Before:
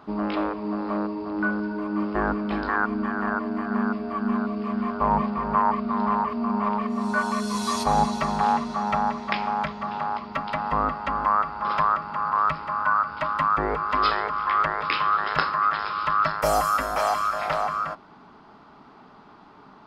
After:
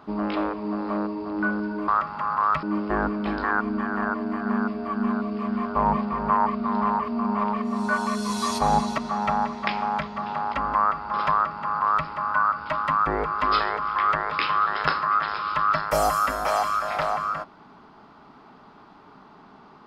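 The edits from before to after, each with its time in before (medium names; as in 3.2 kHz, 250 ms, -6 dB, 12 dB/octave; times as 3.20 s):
8.23–8.63 s: delete
10.19–11.05 s: delete
11.83–12.58 s: copy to 1.88 s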